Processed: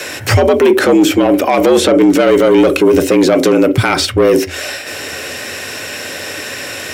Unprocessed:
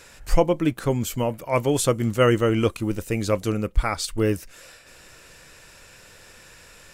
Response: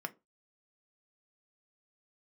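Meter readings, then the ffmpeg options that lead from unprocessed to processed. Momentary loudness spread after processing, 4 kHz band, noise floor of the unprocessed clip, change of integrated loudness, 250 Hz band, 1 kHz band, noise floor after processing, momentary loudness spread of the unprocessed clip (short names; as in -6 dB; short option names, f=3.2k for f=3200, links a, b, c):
13 LU, +15.0 dB, -49 dBFS, +12.5 dB, +14.0 dB, +11.5 dB, -26 dBFS, 7 LU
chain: -filter_complex "[0:a]acrossover=split=2800|7600[a][b][c];[a]acompressor=threshold=-20dB:ratio=4[d];[b]acompressor=threshold=-44dB:ratio=4[e];[c]acompressor=threshold=-56dB:ratio=4[f];[d][e][f]amix=inputs=3:normalize=0,asplit=2[g][h];[h]equalizer=f=125:t=o:w=1:g=-7,equalizer=f=250:t=o:w=1:g=8,equalizer=f=1k:t=o:w=1:g=-11,equalizer=f=4k:t=o:w=1:g=3,equalizer=f=8k:t=o:w=1:g=-6[i];[1:a]atrim=start_sample=2205,highshelf=f=10k:g=7[j];[i][j]afir=irnorm=-1:irlink=0,volume=4.5dB[k];[g][k]amix=inputs=2:normalize=0,asoftclip=type=tanh:threshold=-15dB,afreqshift=76,alimiter=level_in=19dB:limit=-1dB:release=50:level=0:latency=1,volume=-1dB"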